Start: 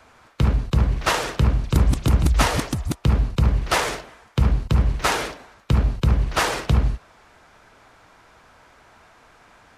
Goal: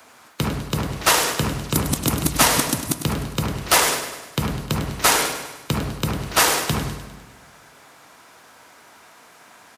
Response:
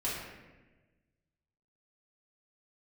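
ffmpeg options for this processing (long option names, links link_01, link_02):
-filter_complex "[0:a]highpass=160,aemphasis=mode=production:type=50fm,aecho=1:1:101|202|303|404|505|606:0.299|0.164|0.0903|0.0497|0.0273|0.015,asplit=2[link_01][link_02];[1:a]atrim=start_sample=2205[link_03];[link_02][link_03]afir=irnorm=-1:irlink=0,volume=-17.5dB[link_04];[link_01][link_04]amix=inputs=2:normalize=0,volume=1.5dB"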